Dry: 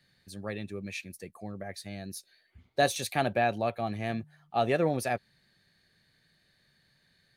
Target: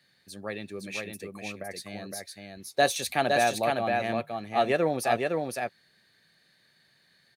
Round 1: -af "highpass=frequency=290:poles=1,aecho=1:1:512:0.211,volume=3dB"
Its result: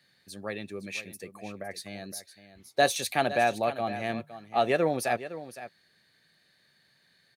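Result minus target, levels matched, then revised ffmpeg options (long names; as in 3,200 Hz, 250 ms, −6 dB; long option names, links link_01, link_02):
echo-to-direct −10 dB
-af "highpass=frequency=290:poles=1,aecho=1:1:512:0.668,volume=3dB"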